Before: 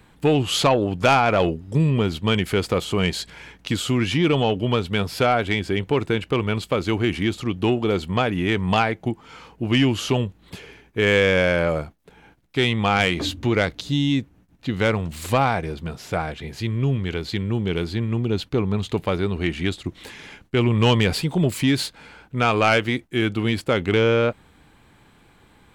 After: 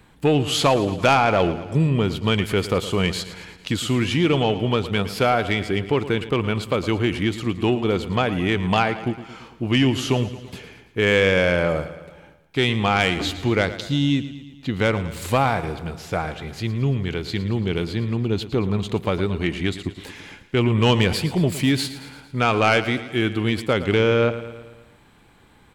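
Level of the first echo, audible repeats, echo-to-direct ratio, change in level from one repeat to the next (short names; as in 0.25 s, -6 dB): -14.0 dB, 5, -12.5 dB, -5.0 dB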